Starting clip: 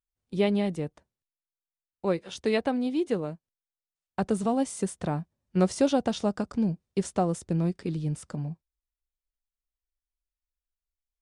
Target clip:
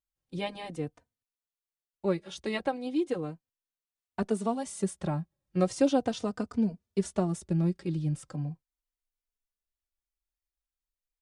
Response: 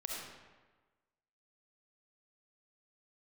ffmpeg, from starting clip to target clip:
-filter_complex "[0:a]asettb=1/sr,asplit=3[link_01][link_02][link_03];[link_01]atrim=end=4.224[link_04];[link_02]atrim=start=4.22:end=4.66,asetpts=PTS-STARTPTS,afade=type=in:duration=0.004:curve=qsin,afade=type=out:start_time=0.436:duration=0.004:curve=qsin,highpass=220[link_05];[link_03]atrim=start=4.656[link_06];[link_04][link_05]acrossfade=duration=0.004:curve1=hsin:curve2=qsin[link_07];[link_07][link_06]acrossfade=duration=0.004:curve1=qsin:curve2=hsin,asplit=2[link_08][link_09];[link_09]adelay=3.2,afreqshift=-0.38[link_10];[link_08][link_10]amix=inputs=2:normalize=1"

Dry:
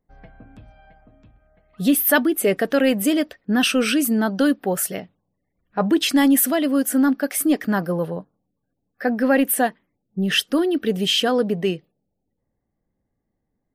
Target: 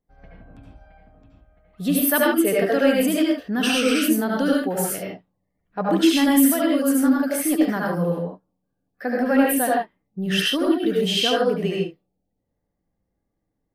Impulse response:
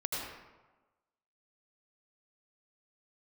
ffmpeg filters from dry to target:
-filter_complex "[1:a]atrim=start_sample=2205,afade=type=out:start_time=0.23:duration=0.01,atrim=end_sample=10584,asetrate=48510,aresample=44100[link_01];[0:a][link_01]afir=irnorm=-1:irlink=0,volume=-3dB"

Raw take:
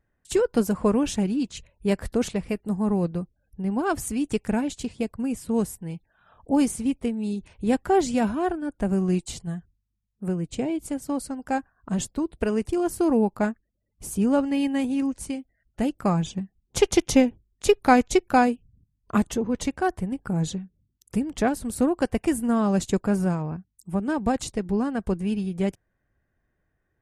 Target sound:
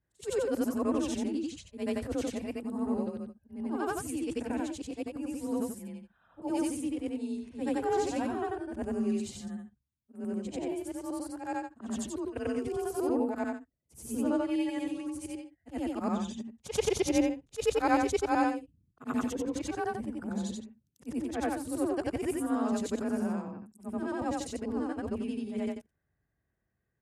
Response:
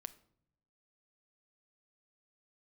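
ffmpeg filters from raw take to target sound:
-af "afftfilt=real='re':imag='-im':win_size=8192:overlap=0.75,afreqshift=35,volume=-3.5dB"

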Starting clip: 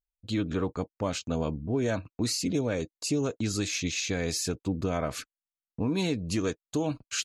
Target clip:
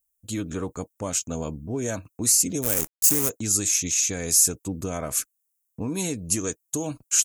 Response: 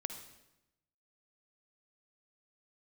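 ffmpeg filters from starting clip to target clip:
-filter_complex "[0:a]asplit=3[link_01][link_02][link_03];[link_01]afade=type=out:start_time=2.62:duration=0.02[link_04];[link_02]acrusher=bits=6:dc=4:mix=0:aa=0.000001,afade=type=in:start_time=2.62:duration=0.02,afade=type=out:start_time=3.28:duration=0.02[link_05];[link_03]afade=type=in:start_time=3.28:duration=0.02[link_06];[link_04][link_05][link_06]amix=inputs=3:normalize=0,aexciter=amount=12.9:drive=1.8:freq=6200,volume=-1dB"

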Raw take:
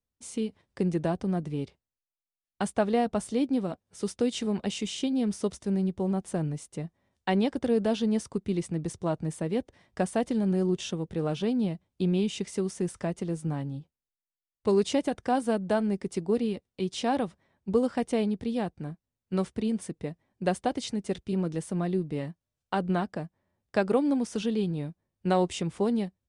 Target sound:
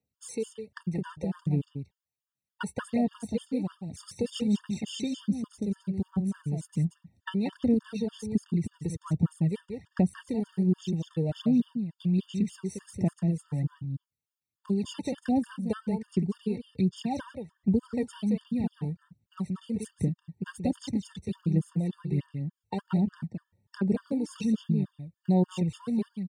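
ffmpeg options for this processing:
ffmpeg -i in.wav -af "asubboost=boost=5.5:cutoff=220,aphaser=in_gain=1:out_gain=1:delay=2.3:decay=0.66:speed=1.3:type=sinusoidal,highpass=frequency=85:width=0.5412,highpass=frequency=85:width=1.3066,acompressor=threshold=-30dB:ratio=2,aecho=1:1:180:0.447,afftfilt=real='re*gt(sin(2*PI*3.4*pts/sr)*(1-2*mod(floor(b*sr/1024/910),2)),0)':imag='im*gt(sin(2*PI*3.4*pts/sr)*(1-2*mod(floor(b*sr/1024/910),2)),0)':win_size=1024:overlap=0.75" out.wav

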